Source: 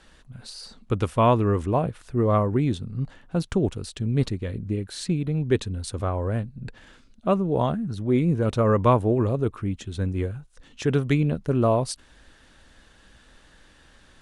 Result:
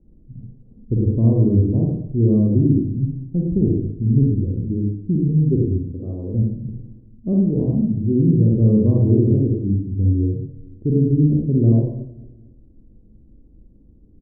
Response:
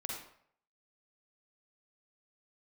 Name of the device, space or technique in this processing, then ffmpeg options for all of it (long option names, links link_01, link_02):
next room: -filter_complex "[0:a]asettb=1/sr,asplit=3[link_01][link_02][link_03];[link_01]atrim=end=5.844[link_04];[link_02]atrim=start=5.84:end=6.34,asetpts=PTS-STARTPTS,afade=type=in:duration=0.004:curve=qsin,afade=type=out:start_time=0.496:duration=0.004:curve=qsin,highpass=frequency=290:poles=1[link_05];[link_03]atrim=start=6.336[link_06];[link_04][link_05]acrossfade=duration=0.004:curve1=hsin:curve2=qsin[link_07];[link_07][link_06]acrossfade=duration=0.004:curve1=qsin:curve2=hsin,lowpass=frequency=340:width=0.5412,lowpass=frequency=340:width=1.3066,asplit=2[link_08][link_09];[link_09]adelay=226,lowpass=frequency=820:poles=1,volume=-20dB,asplit=2[link_10][link_11];[link_11]adelay=226,lowpass=frequency=820:poles=1,volume=0.46,asplit=2[link_12][link_13];[link_13]adelay=226,lowpass=frequency=820:poles=1,volume=0.46[link_14];[link_08][link_10][link_12][link_14]amix=inputs=4:normalize=0[link_15];[1:a]atrim=start_sample=2205[link_16];[link_15][link_16]afir=irnorm=-1:irlink=0,volume=8dB"